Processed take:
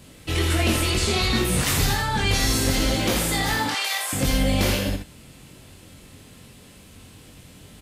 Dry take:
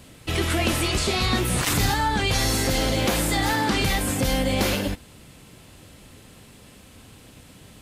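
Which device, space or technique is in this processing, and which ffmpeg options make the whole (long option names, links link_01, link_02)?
slapback doubling: -filter_complex "[0:a]asettb=1/sr,asplit=3[link_01][link_02][link_03];[link_01]atrim=end=3.664[link_04];[link_02]atrim=start=3.66:end=4.13,asetpts=PTS-STARTPTS,afade=type=in:duration=0.004:curve=qsin,afade=type=out:start_time=0.466:duration=0.004:curve=qsin,highpass=frequency=680:width=0.5412,highpass=frequency=680:width=1.3066[link_05];[link_03]atrim=start=4.126[link_06];[link_04][link_05]acrossfade=duration=0.004:curve1=hsin:curve2=qsin[link_07];[link_07][link_06]acrossfade=duration=0.004:curve1=qsin:curve2=hsin,equalizer=frequency=920:width=0.67:gain=-2.5,asplit=3[link_08][link_09][link_10];[link_09]adelay=22,volume=-3dB[link_11];[link_10]adelay=83,volume=-5.5dB[link_12];[link_08][link_11][link_12]amix=inputs=3:normalize=0,volume=-1dB"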